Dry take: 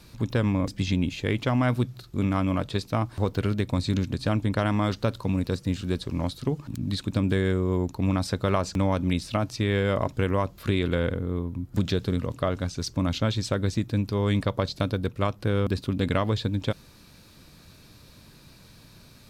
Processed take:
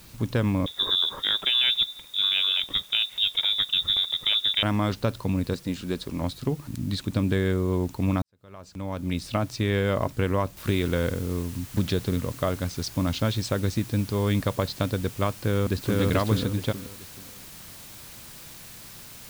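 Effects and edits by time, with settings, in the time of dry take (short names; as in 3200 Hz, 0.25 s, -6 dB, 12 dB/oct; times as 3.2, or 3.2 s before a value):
0.66–4.63 inverted band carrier 3700 Hz
5.53–6.22 bell 99 Hz -10.5 dB
8.22–9.29 fade in quadratic
10.57 noise floor step -53 dB -45 dB
15.38–16 echo throw 0.43 s, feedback 30%, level -0.5 dB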